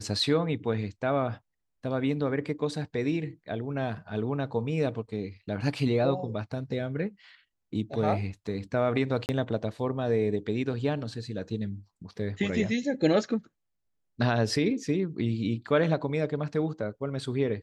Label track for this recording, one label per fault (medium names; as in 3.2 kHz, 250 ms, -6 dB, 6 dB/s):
9.260000	9.290000	dropout 29 ms